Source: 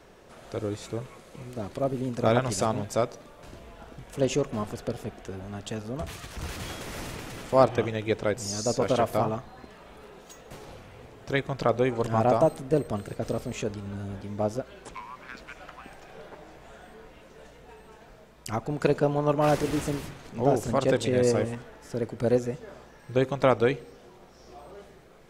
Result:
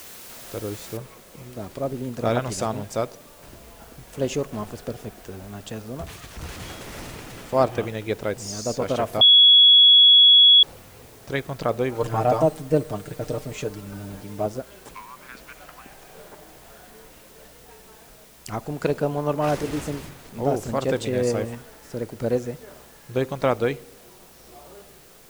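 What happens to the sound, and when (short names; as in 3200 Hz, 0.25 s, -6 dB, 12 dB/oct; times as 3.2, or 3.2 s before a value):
0.97 noise floor step -42 dB -52 dB
9.21–10.63 bleep 3360 Hz -9 dBFS
11.94–14.46 comb 6.6 ms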